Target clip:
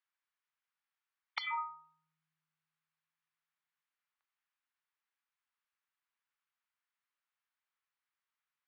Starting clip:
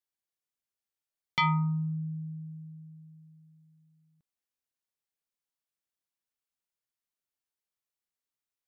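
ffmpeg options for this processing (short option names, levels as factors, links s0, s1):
-af "highpass=f=1000:w=0.5412,highpass=f=1000:w=1.3066,afftfilt=real='re*lt(hypot(re,im),0.1)':imag='im*lt(hypot(re,im),0.1)':win_size=1024:overlap=0.75,lowpass=2100,volume=2.82"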